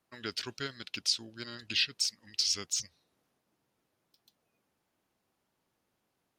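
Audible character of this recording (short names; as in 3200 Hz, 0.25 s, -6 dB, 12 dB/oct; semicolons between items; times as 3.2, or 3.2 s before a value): noise floor -81 dBFS; spectral tilt -0.5 dB/oct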